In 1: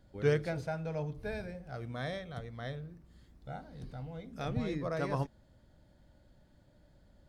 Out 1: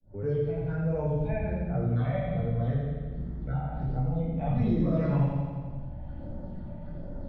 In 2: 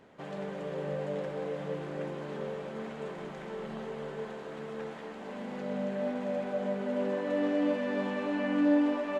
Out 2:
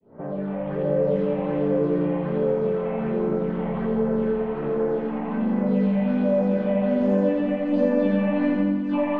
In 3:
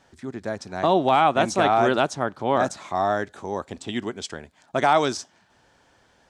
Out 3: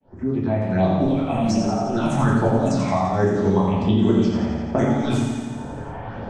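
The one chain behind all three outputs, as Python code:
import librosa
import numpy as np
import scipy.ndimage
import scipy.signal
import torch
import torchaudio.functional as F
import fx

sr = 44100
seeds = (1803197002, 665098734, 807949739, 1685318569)

p1 = fx.fade_in_head(x, sr, length_s=1.16)
p2 = fx.dynamic_eq(p1, sr, hz=200.0, q=1.5, threshold_db=-39.0, ratio=4.0, max_db=4)
p3 = fx.hpss(p2, sr, part='harmonic', gain_db=7)
p4 = fx.low_shelf(p3, sr, hz=500.0, db=4.0)
p5 = fx.env_lowpass(p4, sr, base_hz=1300.0, full_db=-11.5)
p6 = fx.over_compress(p5, sr, threshold_db=-20.0, ratio=-0.5)
p7 = fx.phaser_stages(p6, sr, stages=6, low_hz=340.0, high_hz=3900.0, hz=1.3, feedback_pct=25)
p8 = p7 + fx.echo_feedback(p7, sr, ms=85, feedback_pct=57, wet_db=-4.5, dry=0)
p9 = fx.room_shoebox(p8, sr, seeds[0], volume_m3=110.0, walls='mixed', distance_m=1.5)
p10 = fx.band_squash(p9, sr, depth_pct=70)
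y = p10 * 10.0 ** (-6.0 / 20.0)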